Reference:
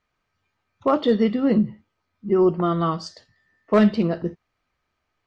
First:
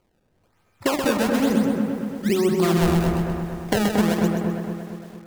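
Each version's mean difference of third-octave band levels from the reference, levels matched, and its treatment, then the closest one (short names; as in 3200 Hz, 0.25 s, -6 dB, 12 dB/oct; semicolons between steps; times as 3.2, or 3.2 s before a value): 15.0 dB: compressor 10:1, threshold -28 dBFS, peak gain reduction 16 dB; decimation with a swept rate 24×, swing 160% 1.1 Hz; dark delay 0.229 s, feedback 56%, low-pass 1700 Hz, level -3.5 dB; lo-fi delay 0.129 s, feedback 35%, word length 9-bit, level -5 dB; gain +8.5 dB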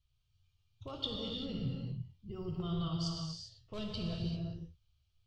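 10.0 dB: bell 1900 Hz -6 dB 0.35 oct; limiter -16 dBFS, peak gain reduction 7.5 dB; EQ curve 120 Hz 0 dB, 210 Hz -28 dB, 2000 Hz -28 dB, 3100 Hz -8 dB, 6300 Hz -13 dB; non-linear reverb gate 0.42 s flat, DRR -0.5 dB; gain +6 dB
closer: second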